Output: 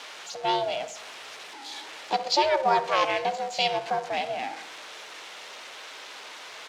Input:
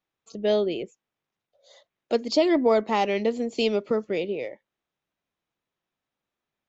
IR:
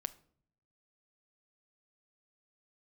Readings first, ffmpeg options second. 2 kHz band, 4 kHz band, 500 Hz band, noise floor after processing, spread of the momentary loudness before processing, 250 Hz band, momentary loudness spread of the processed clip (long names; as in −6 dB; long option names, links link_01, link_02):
+4.5 dB, +5.0 dB, −5.0 dB, −43 dBFS, 13 LU, −13.0 dB, 17 LU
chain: -filter_complex "[0:a]aeval=exprs='val(0)+0.5*0.0168*sgn(val(0))':channel_layout=same,highshelf=frequency=2600:gain=7.5,aeval=exprs='val(0)*sin(2*PI*270*n/s)':channel_layout=same,highpass=530,lowpass=5100,asplit=2[link_01][link_02];[link_02]adelay=66,lowpass=frequency=2600:poles=1,volume=-13dB,asplit=2[link_03][link_04];[link_04]adelay=66,lowpass=frequency=2600:poles=1,volume=0.54,asplit=2[link_05][link_06];[link_06]adelay=66,lowpass=frequency=2600:poles=1,volume=0.54,asplit=2[link_07][link_08];[link_08]adelay=66,lowpass=frequency=2600:poles=1,volume=0.54,asplit=2[link_09][link_10];[link_10]adelay=66,lowpass=frequency=2600:poles=1,volume=0.54,asplit=2[link_11][link_12];[link_12]adelay=66,lowpass=frequency=2600:poles=1,volume=0.54[link_13];[link_01][link_03][link_05][link_07][link_09][link_11][link_13]amix=inputs=7:normalize=0,asplit=2[link_14][link_15];[1:a]atrim=start_sample=2205[link_16];[link_15][link_16]afir=irnorm=-1:irlink=0,volume=6.5dB[link_17];[link_14][link_17]amix=inputs=2:normalize=0,volume=-6dB" -ar 44100 -c:a aac -b:a 96k